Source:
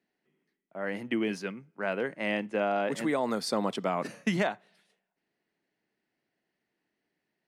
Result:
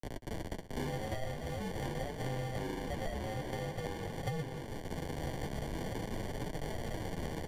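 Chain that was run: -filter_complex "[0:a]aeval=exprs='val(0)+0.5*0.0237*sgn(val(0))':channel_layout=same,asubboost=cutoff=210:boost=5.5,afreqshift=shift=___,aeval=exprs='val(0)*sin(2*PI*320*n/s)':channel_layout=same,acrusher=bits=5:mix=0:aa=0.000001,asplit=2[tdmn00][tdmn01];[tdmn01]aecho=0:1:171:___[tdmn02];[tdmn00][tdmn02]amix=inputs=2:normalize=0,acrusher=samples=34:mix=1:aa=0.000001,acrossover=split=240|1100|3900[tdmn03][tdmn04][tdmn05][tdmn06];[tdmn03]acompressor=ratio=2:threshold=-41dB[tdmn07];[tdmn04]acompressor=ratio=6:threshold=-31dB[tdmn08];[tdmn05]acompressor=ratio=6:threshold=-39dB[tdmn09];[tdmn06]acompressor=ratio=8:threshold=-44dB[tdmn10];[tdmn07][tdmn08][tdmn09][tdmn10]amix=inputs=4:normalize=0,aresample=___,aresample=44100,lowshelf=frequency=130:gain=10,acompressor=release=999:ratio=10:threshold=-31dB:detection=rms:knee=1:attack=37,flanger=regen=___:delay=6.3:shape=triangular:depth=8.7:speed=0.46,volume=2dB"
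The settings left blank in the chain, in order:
-18, 0.2, 32000, -33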